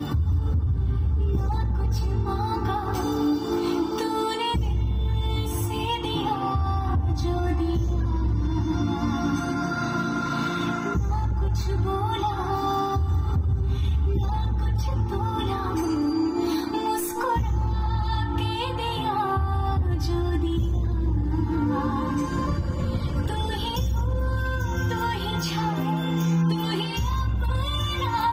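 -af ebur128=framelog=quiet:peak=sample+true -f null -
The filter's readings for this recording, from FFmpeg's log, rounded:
Integrated loudness:
  I:         -25.6 LUFS
  Threshold: -35.6 LUFS
Loudness range:
  LRA:         0.9 LU
  Threshold: -45.6 LUFS
  LRA low:   -26.1 LUFS
  LRA high:  -25.2 LUFS
Sample peak:
  Peak:      -14.2 dBFS
True peak:
  Peak:      -14.2 dBFS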